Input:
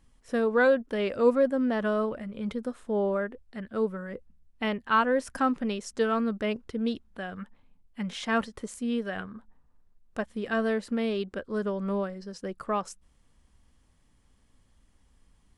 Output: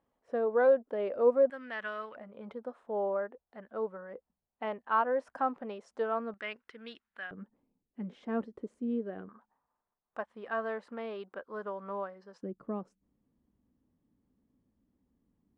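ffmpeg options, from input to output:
-af "asetnsamples=n=441:p=0,asendcmd='1.5 bandpass f 2000;2.16 bandpass f 760;6.34 bandpass f 1800;7.31 bandpass f 340;9.29 bandpass f 950;12.43 bandpass f 260',bandpass=f=630:t=q:w=1.6:csg=0"

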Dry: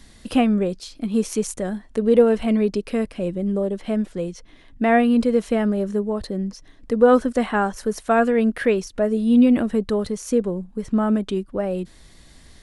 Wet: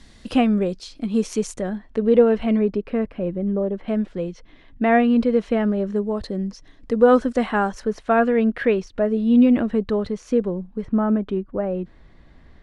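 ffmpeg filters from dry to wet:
-af "asetnsamples=n=441:p=0,asendcmd='1.61 lowpass f 3500;2.59 lowpass f 2000;3.88 lowpass f 3700;5.96 lowpass f 6400;7.8 lowpass f 3500;10.85 lowpass f 1800',lowpass=6900"

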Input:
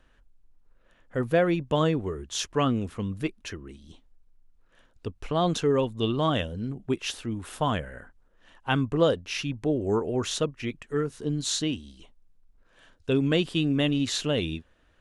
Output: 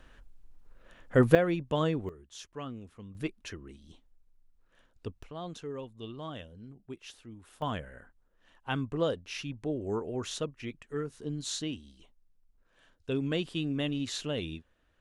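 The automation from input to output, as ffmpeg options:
-af "asetnsamples=n=441:p=0,asendcmd='1.35 volume volume -5dB;2.09 volume volume -16dB;3.15 volume volume -5dB;5.23 volume volume -16dB;7.62 volume volume -7.5dB',volume=2"

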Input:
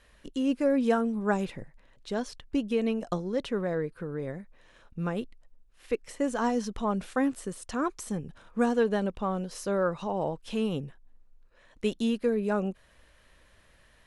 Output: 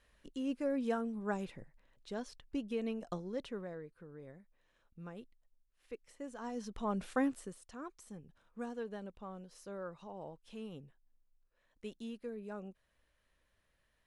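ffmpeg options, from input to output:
-af "volume=1.33,afade=t=out:st=3.37:d=0.43:silence=0.446684,afade=t=in:st=6.43:d=0.71:silence=0.237137,afade=t=out:st=7.14:d=0.52:silence=0.237137"

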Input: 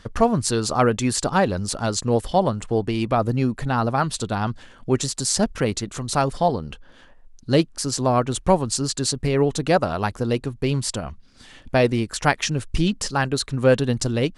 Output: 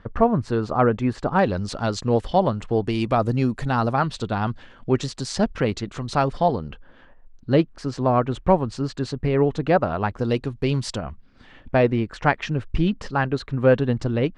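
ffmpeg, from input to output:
-af "asetnsamples=n=441:p=0,asendcmd='1.39 lowpass f 4100;2.86 lowpass f 8000;3.93 lowpass f 3700;6.68 lowpass f 2300;10.19 lowpass f 5000;10.98 lowpass f 2300',lowpass=1700"

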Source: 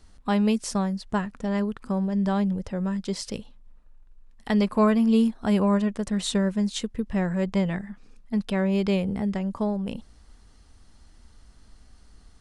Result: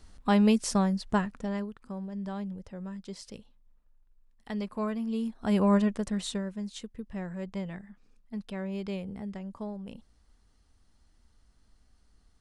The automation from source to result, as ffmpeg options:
-af "volume=3.76,afade=t=out:st=1.11:d=0.6:silence=0.251189,afade=t=in:st=5.21:d=0.56:silence=0.266073,afade=t=out:st=5.77:d=0.68:silence=0.281838"

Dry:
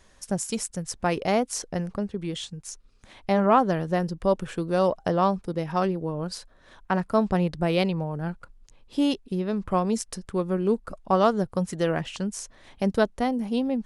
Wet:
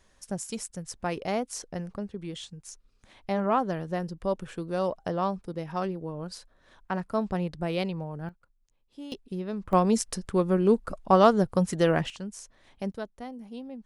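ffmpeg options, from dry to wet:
-af "asetnsamples=n=441:p=0,asendcmd='8.29 volume volume -18.5dB;9.12 volume volume -6dB;9.73 volume volume 2dB;12.1 volume volume -8dB;12.92 volume volume -14.5dB',volume=0.501"

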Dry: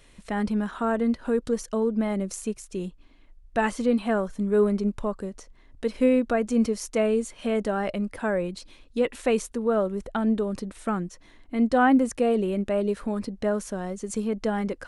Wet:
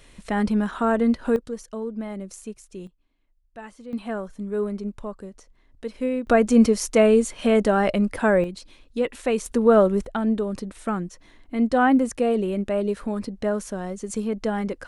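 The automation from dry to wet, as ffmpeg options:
-af "asetnsamples=n=441:p=0,asendcmd='1.36 volume volume -6dB;2.87 volume volume -16dB;3.93 volume volume -5dB;6.27 volume volume 7dB;8.44 volume volume 0dB;9.46 volume volume 8dB;10.05 volume volume 1dB',volume=1.58"

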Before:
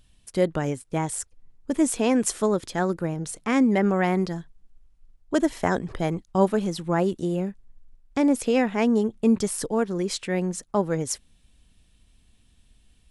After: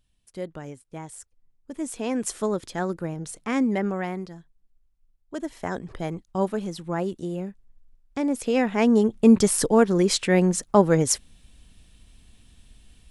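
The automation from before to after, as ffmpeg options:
-af "volume=5.31,afade=t=in:st=1.72:d=0.71:silence=0.375837,afade=t=out:st=3.69:d=0.59:silence=0.398107,afade=t=in:st=5.35:d=0.59:silence=0.473151,afade=t=in:st=8.3:d=1.25:silence=0.281838"

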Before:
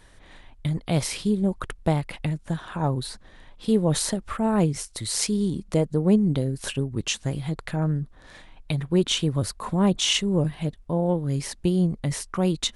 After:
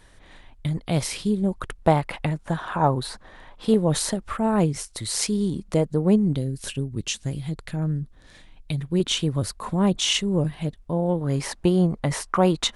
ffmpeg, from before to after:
-af "asetnsamples=n=441:p=0,asendcmd='1.82 equalizer g 9;3.74 equalizer g 2;6.33 equalizer g -7.5;9 equalizer g 0;11.21 equalizer g 11',equalizer=f=940:t=o:w=2.3:g=0"

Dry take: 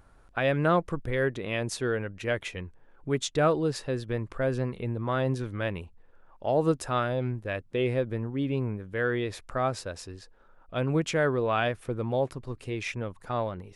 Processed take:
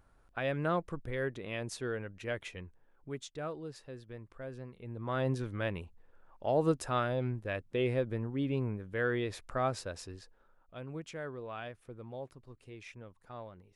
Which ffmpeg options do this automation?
-af "volume=1.58,afade=t=out:st=2.65:d=0.67:silence=0.398107,afade=t=in:st=4.8:d=0.47:silence=0.251189,afade=t=out:st=10.15:d=0.64:silence=0.251189"

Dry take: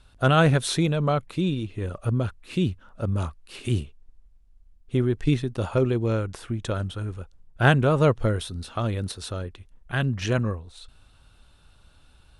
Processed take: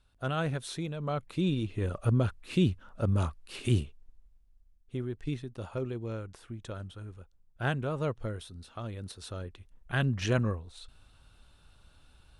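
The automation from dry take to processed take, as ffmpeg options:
-af "volume=2.37,afade=t=in:st=0.99:d=0.69:silence=0.266073,afade=t=out:st=3.7:d=1.28:silence=0.281838,afade=t=in:st=8.96:d=0.99:silence=0.354813"

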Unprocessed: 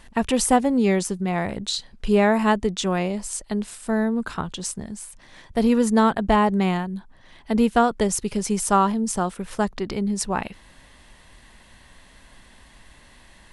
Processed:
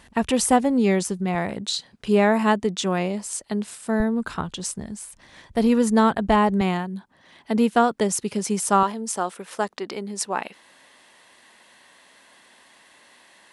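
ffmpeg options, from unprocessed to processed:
-af "asetnsamples=n=441:p=0,asendcmd='1.35 highpass f 120;4 highpass f 42;6.61 highpass f 150;8.83 highpass f 350',highpass=56"

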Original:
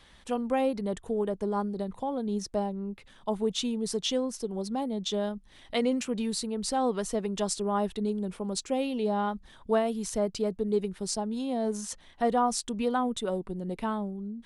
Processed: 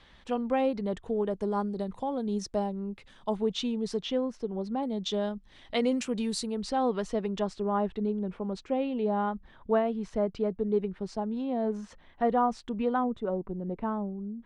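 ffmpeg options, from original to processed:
-af "asetnsamples=n=441:p=0,asendcmd='1.31 lowpass f 7700;3.36 lowpass f 4300;4.03 lowpass f 2500;4.83 lowpass f 5500;5.83 lowpass f 8800;6.62 lowpass f 4000;7.39 lowpass f 2200;13.04 lowpass f 1300',lowpass=4400"

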